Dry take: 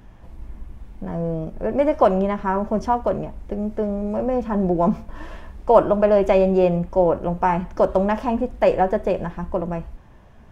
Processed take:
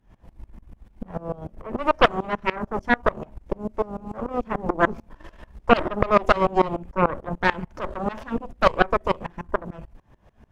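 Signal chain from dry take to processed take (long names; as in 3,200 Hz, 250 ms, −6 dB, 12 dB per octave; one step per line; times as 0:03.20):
harmonic generator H 6 −7 dB, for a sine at −1.5 dBFS
tremolo with a ramp in dB swelling 6.8 Hz, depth 23 dB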